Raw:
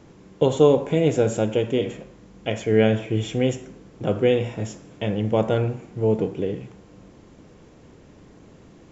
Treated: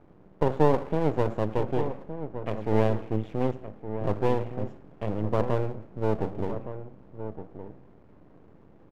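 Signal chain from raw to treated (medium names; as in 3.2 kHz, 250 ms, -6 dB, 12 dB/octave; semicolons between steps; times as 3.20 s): low-pass 1.3 kHz 12 dB/octave; half-wave rectifier; echo from a far wall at 200 m, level -10 dB; trim -2.5 dB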